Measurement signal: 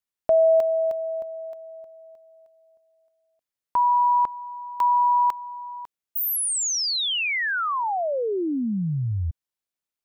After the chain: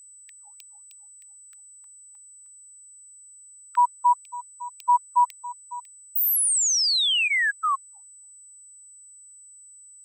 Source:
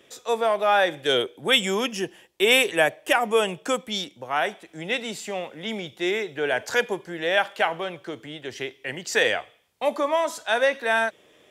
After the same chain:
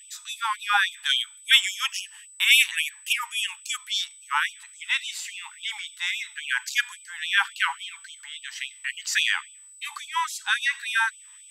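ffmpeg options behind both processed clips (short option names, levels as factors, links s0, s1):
-af "aeval=exprs='val(0)+0.00355*sin(2*PI*8000*n/s)':c=same,afftfilt=real='re*gte(b*sr/1024,800*pow(2400/800,0.5+0.5*sin(2*PI*3.6*pts/sr)))':imag='im*gte(b*sr/1024,800*pow(2400/800,0.5+0.5*sin(2*PI*3.6*pts/sr)))':win_size=1024:overlap=0.75,volume=1.41"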